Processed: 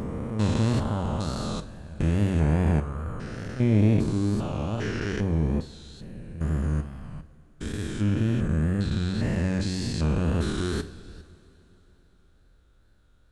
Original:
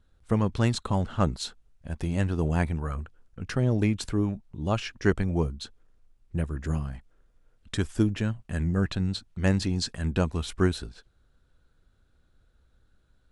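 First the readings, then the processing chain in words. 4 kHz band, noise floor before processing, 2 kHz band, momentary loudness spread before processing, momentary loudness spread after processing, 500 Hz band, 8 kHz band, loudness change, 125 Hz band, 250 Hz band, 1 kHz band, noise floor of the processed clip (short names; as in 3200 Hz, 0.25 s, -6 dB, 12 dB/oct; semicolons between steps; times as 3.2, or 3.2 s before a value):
-2.0 dB, -66 dBFS, -1.0 dB, 12 LU, 16 LU, -0.5 dB, -1.0 dB, +2.0 dB, +3.0 dB, +2.0 dB, -1.0 dB, -59 dBFS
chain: stepped spectrum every 0.4 s; wow and flutter 72 cents; two-slope reverb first 0.38 s, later 3.7 s, from -18 dB, DRR 9 dB; gain +5 dB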